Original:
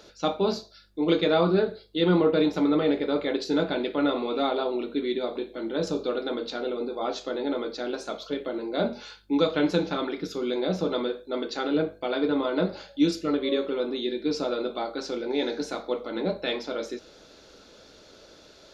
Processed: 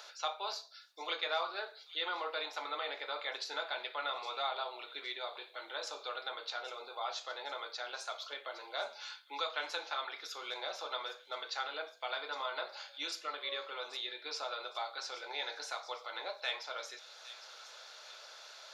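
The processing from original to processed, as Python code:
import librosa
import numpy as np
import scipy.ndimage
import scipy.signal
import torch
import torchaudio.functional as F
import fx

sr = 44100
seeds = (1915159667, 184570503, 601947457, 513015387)

y = scipy.signal.sosfilt(scipy.signal.butter(4, 780.0, 'highpass', fs=sr, output='sos'), x)
y = fx.echo_wet_highpass(y, sr, ms=812, feedback_pct=41, hz=3900.0, wet_db=-13.5)
y = fx.band_squash(y, sr, depth_pct=40)
y = y * librosa.db_to_amplitude(-4.0)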